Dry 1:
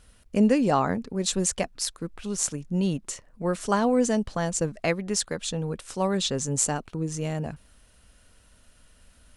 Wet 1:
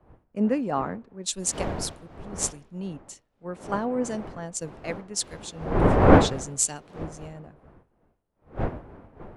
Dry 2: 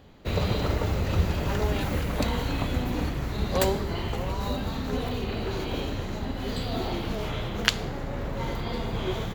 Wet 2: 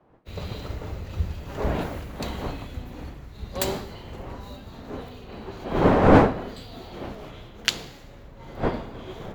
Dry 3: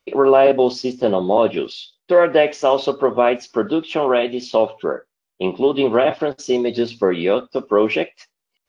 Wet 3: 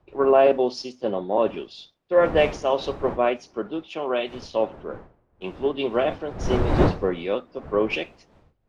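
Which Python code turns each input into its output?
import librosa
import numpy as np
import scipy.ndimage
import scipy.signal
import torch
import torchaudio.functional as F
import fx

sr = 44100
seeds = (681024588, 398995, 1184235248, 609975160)

y = fx.dmg_wind(x, sr, seeds[0], corner_hz=600.0, level_db=-27.0)
y = fx.band_widen(y, sr, depth_pct=100)
y = y * 10.0 ** (-7.0 / 20.0)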